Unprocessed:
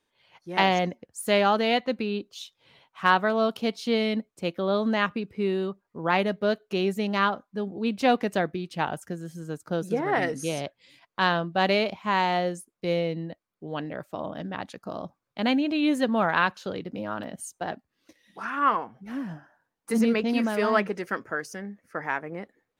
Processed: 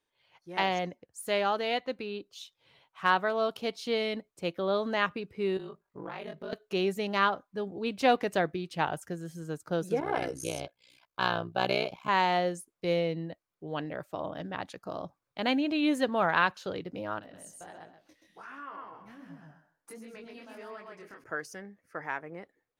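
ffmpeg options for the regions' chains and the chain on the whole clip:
ffmpeg -i in.wav -filter_complex "[0:a]asettb=1/sr,asplit=3[link_01][link_02][link_03];[link_01]atrim=end=5.574[link_04];[link_02]atrim=start=5.57:end=6.53,asetpts=PTS-STARTPTS,afade=type=in:duration=0.004:curve=qsin,afade=type=out:start_time=0.956:duration=0.004:curve=qsin,acompressor=threshold=-32dB:ratio=6:attack=3.2:release=140:knee=1:detection=peak,aeval=exprs='val(0)*sin(2*PI*25*n/s)':channel_layout=same,asplit=2[link_05][link_06];[link_06]adelay=26,volume=-3dB[link_07];[link_05][link_07]amix=inputs=2:normalize=0,atrim=end_sample=42336[link_08];[link_03]atrim=start=6.526[link_09];[link_04][link_08]acrossfade=duration=0.004:curve1=hsin:curve2=qsin[link_10];[link_10][link_09]acrossfade=duration=0.004:curve1=qsin:curve2=hsin,asettb=1/sr,asplit=3[link_11][link_12][link_13];[link_11]atrim=end=10.004[link_14];[link_12]atrim=start=10:end=12.09,asetpts=PTS-STARTPTS,afade=type=in:duration=0.004:curve=qsin,afade=type=out:start_time=2.086:duration=0.004:curve=qsin,highshelf=frequency=7100:gain=6,tremolo=f=62:d=0.947,asuperstop=centerf=1900:order=8:qfactor=7.2[link_15];[link_13]atrim=start=12.086[link_16];[link_14][link_15]acrossfade=duration=0.004:curve1=hsin:curve2=qsin[link_17];[link_17][link_16]acrossfade=duration=0.004:curve1=qsin:curve2=hsin,asettb=1/sr,asplit=3[link_18][link_19][link_20];[link_18]atrim=end=17.194[link_21];[link_19]atrim=start=17.19:end=21.24,asetpts=PTS-STARTPTS,afade=type=in:duration=0.004:curve=qsin,afade=type=out:start_time=4.046:duration=0.004:curve=qsin,aecho=1:1:129|258|387:0.562|0.0844|0.0127,atrim=end_sample=178605,acompressor=threshold=-40dB:ratio=3:attack=3.2:release=140:knee=1:detection=peak,flanger=delay=18:depth=6.9:speed=1.4[link_22];[link_20]atrim=start=21.236[link_23];[link_21][link_22]acrossfade=duration=0.004:curve1=hsin:curve2=qsin[link_24];[link_24][link_23]acrossfade=duration=0.004:curve1=qsin:curve2=hsin,equalizer=frequency=220:width_type=o:width=0.38:gain=-8,dynaudnorm=framelen=710:gausssize=9:maxgain=5.5dB,volume=-6.5dB" out.wav

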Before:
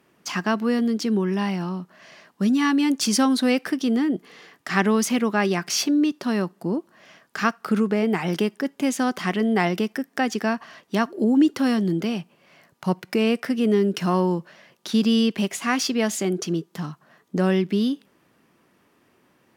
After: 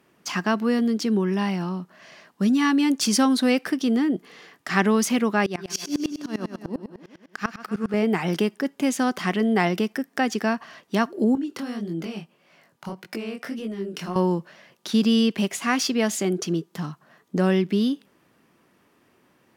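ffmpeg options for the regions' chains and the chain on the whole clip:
ffmpeg -i in.wav -filter_complex "[0:a]asettb=1/sr,asplit=3[link_01][link_02][link_03];[link_01]atrim=end=5.464[link_04];[link_02]atrim=start=5.46:end=7.94,asetpts=PTS-STARTPTS,afade=type=in:duration=0.004:curve=qsin,afade=type=out:start_time=2.476:duration=0.004:curve=qsin,aecho=1:1:124|248|372|496|620|744|868:0.398|0.231|0.134|0.0777|0.0451|0.0261|0.0152,atrim=end_sample=109368,aeval=exprs='val(0)*pow(10,-24*if(lt(mod(-10*n/s,1),2*abs(-10)/1000),1-mod(-10*n/s,1)/(2*abs(-10)/1000),(mod(-10*n/s,1)-2*abs(-10)/1000)/(1-2*abs(-10)/1000))/20)':channel_layout=same[link_05];[link_03]atrim=start=7.936[link_06];[link_04][link_05]acrossfade=duration=0.004:curve1=hsin:curve2=qsin[link_07];[link_07][link_06]acrossfade=duration=0.004:curve1=qsin:curve2=hsin,asettb=1/sr,asplit=3[link_08][link_09][link_10];[link_08]atrim=end=11.354[link_11];[link_09]atrim=start=11.35:end=14.16,asetpts=PTS-STARTPTS,afade=type=in:duration=0.004:curve=qsin,afade=type=out:start_time=2.806:duration=0.004:curve=qsin,highpass=130,acompressor=threshold=-23dB:ratio=10:attack=3.2:release=140:knee=1:detection=peak,flanger=delay=17.5:depth=7.7:speed=1.7[link_12];[link_10]atrim=start=14.156[link_13];[link_11][link_12]acrossfade=duration=0.004:curve1=hsin:curve2=qsin[link_14];[link_14][link_13]acrossfade=duration=0.004:curve1=qsin:curve2=hsin" out.wav

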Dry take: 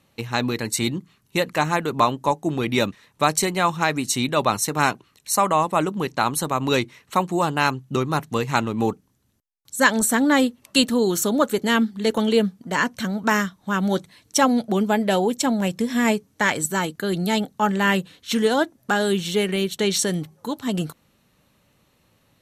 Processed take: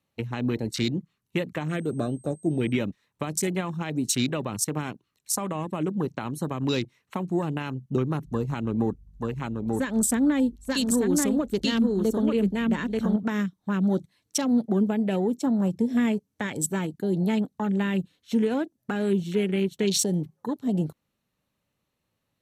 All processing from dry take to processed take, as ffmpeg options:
ffmpeg -i in.wav -filter_complex "[0:a]asettb=1/sr,asplit=3[link_01][link_02][link_03];[link_01]atrim=end=1.684[link_04];[link_02]atrim=start=1.68:end=2.73,asetpts=PTS-STARTPTS,afade=type=in:duration=0.004:curve=qsin,afade=type=out:start_time=1.046:duration=0.004:curve=qsin,aeval=exprs='val(0)+0.0126*sin(2*PI*8300*n/s)':channel_layout=same,asuperstop=centerf=950:order=4:qfactor=1.8[link_05];[link_03]atrim=start=2.726[link_06];[link_04][link_05]acrossfade=duration=0.004:curve1=hsin:curve2=qsin[link_07];[link_07][link_06]acrossfade=duration=0.004:curve1=qsin:curve2=hsin,asettb=1/sr,asplit=3[link_08][link_09][link_10];[link_08]atrim=end=8.254[link_11];[link_09]atrim=start=8.25:end=13.16,asetpts=PTS-STARTPTS,afade=type=in:duration=0.004:curve=qsin,afade=type=out:start_time=4.906:duration=0.004:curve=qsin,aeval=exprs='val(0)+0.00447*(sin(2*PI*50*n/s)+sin(2*PI*2*50*n/s)/2+sin(2*PI*3*50*n/s)/3+sin(2*PI*4*50*n/s)/4+sin(2*PI*5*50*n/s)/5)':channel_layout=same,aecho=1:1:885:0.631,atrim=end_sample=216531[link_12];[link_10]atrim=start=13.156[link_13];[link_11][link_12]acrossfade=duration=0.004:curve1=hsin:curve2=qsin[link_14];[link_14][link_13]acrossfade=duration=0.004:curve1=qsin:curve2=hsin,afwtdn=0.0355,alimiter=limit=-12dB:level=0:latency=1:release=99,acrossover=split=410|3000[link_15][link_16][link_17];[link_16]acompressor=threshold=-35dB:ratio=6[link_18];[link_15][link_18][link_17]amix=inputs=3:normalize=0" out.wav

